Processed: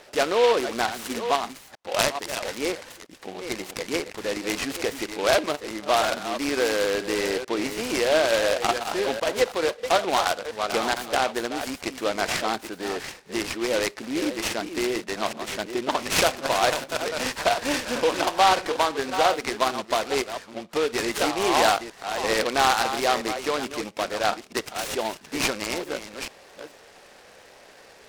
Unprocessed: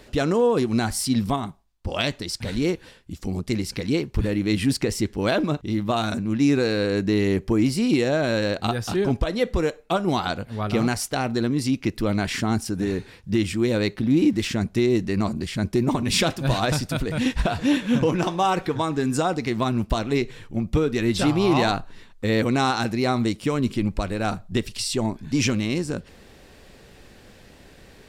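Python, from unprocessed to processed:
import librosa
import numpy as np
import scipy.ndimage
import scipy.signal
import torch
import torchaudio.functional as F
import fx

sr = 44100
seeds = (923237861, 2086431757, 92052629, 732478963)

y = fx.reverse_delay(x, sr, ms=438, wet_db=-9.5)
y = scipy.signal.sosfilt(scipy.signal.cheby1(2, 1.0, [570.0, 3100.0], 'bandpass', fs=sr, output='sos'), y)
y = fx.noise_mod_delay(y, sr, seeds[0], noise_hz=2400.0, depth_ms=0.068)
y = F.gain(torch.from_numpy(y), 4.0).numpy()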